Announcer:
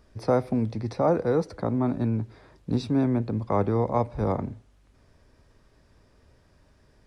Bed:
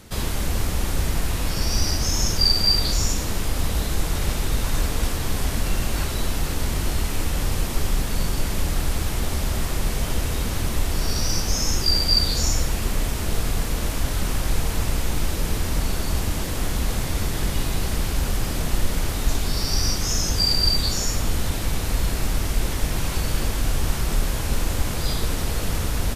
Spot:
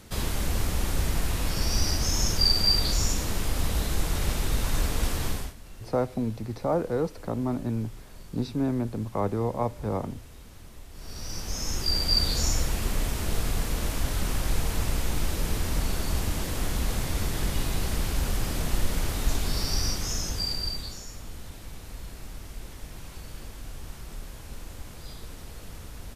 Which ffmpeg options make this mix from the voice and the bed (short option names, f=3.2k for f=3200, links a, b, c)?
-filter_complex "[0:a]adelay=5650,volume=-3.5dB[a];[1:a]volume=15.5dB,afade=t=out:st=5.26:d=0.28:silence=0.105925,afade=t=in:st=10.92:d=1.34:silence=0.112202,afade=t=out:st=19.57:d=1.47:silence=0.211349[b];[a][b]amix=inputs=2:normalize=0"